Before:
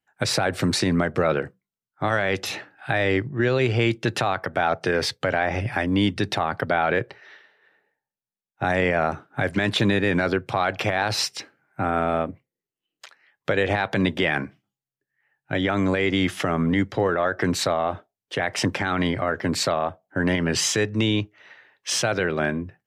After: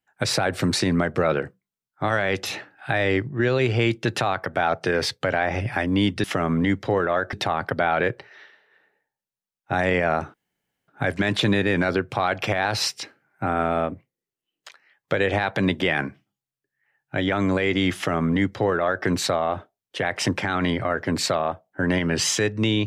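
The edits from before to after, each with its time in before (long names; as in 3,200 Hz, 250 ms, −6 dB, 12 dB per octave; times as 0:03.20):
0:09.25: splice in room tone 0.54 s
0:16.33–0:17.42: duplicate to 0:06.24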